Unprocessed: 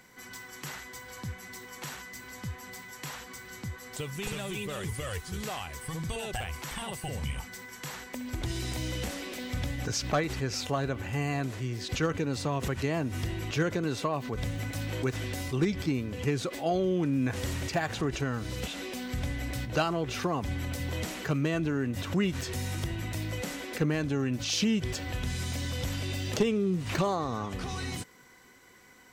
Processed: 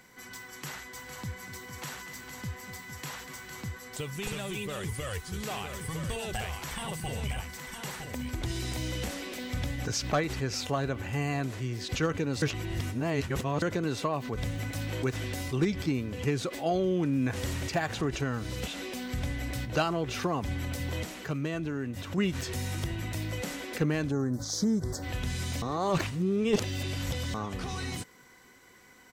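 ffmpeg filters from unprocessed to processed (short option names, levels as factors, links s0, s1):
-filter_complex "[0:a]asplit=3[s0][s1][s2];[s0]afade=t=out:st=0.96:d=0.02[s3];[s1]aecho=1:1:243|457:0.282|0.316,afade=t=in:st=0.96:d=0.02,afade=t=out:st=3.77:d=0.02[s4];[s2]afade=t=in:st=3.77:d=0.02[s5];[s3][s4][s5]amix=inputs=3:normalize=0,asettb=1/sr,asplit=3[s6][s7][s8];[s6]atrim=end=4.544[s9];[s7]atrim=start=4.54:end=8.31,asetpts=PTS-STARTPTS,afade=t=in:d=0.004:c=qsin,afade=t=out:st=3.766:d=0.004:c=qsin,aecho=1:1:961:0.447,atrim=end_sample=166257[s10];[s8]atrim=start=8.306[s11];[s9][s10]acrossfade=d=0.004:c1=hsin:c2=qsin[s12];[s12][s11]acrossfade=d=0.004:c1=qsin:c2=hsin,asplit=3[s13][s14][s15];[s13]afade=t=out:st=24.1:d=0.02[s16];[s14]asuperstop=centerf=2700:order=4:qfactor=0.76,afade=t=in:st=24.1:d=0.02,afade=t=out:st=25.02:d=0.02[s17];[s15]afade=t=in:st=25.02:d=0.02[s18];[s16][s17][s18]amix=inputs=3:normalize=0,asplit=7[s19][s20][s21][s22][s23][s24][s25];[s19]atrim=end=12.422[s26];[s20]atrim=start=12.418:end=13.622,asetpts=PTS-STARTPTS,areverse[s27];[s21]atrim=start=13.618:end=21.032[s28];[s22]atrim=start=21.028:end=22.182,asetpts=PTS-STARTPTS,volume=0.631[s29];[s23]atrim=start=22.178:end=25.622[s30];[s24]atrim=start=25.618:end=27.342,asetpts=PTS-STARTPTS,areverse[s31];[s25]atrim=start=27.338[s32];[s26][s27]acrossfade=d=0.004:c1=hsin:c2=hsin[s33];[s33][s28]acrossfade=d=0.004:c1=hsin:c2=hsin[s34];[s34][s29]acrossfade=d=0.004:c1=hsin:c2=hsin[s35];[s35][s30]acrossfade=d=0.004:c1=hsin:c2=hsin[s36];[s36][s31]acrossfade=d=0.004:c1=hsin:c2=hsin[s37];[s37][s32]acrossfade=d=0.004:c1=hsin:c2=hsin"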